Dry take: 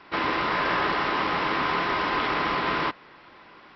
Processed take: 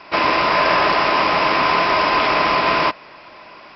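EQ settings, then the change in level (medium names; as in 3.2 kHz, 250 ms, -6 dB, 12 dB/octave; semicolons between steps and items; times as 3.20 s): graphic EQ with 31 bands 630 Hz +11 dB, 1 kHz +5 dB, 2.5 kHz +8 dB, 5 kHz +12 dB; +5.0 dB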